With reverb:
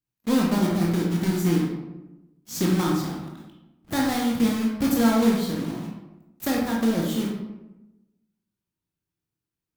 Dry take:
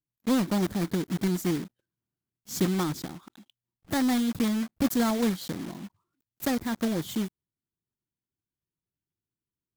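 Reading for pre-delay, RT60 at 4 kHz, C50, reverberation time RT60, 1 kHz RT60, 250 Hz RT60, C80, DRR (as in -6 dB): 16 ms, 0.55 s, 2.0 dB, 1.0 s, 0.95 s, 1.3 s, 5.5 dB, -2.5 dB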